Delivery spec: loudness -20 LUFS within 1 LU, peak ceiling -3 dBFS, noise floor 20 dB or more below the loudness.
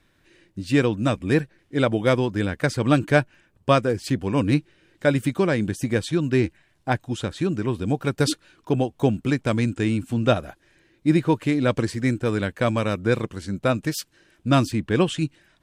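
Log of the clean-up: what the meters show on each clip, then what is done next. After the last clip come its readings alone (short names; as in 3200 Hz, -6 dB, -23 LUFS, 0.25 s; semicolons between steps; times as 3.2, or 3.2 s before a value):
loudness -23.5 LUFS; peak -5.0 dBFS; loudness target -20.0 LUFS
-> gain +3.5 dB; limiter -3 dBFS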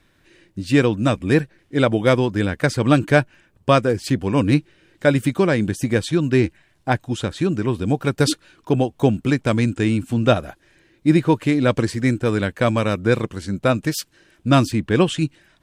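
loudness -20.0 LUFS; peak -3.0 dBFS; noise floor -60 dBFS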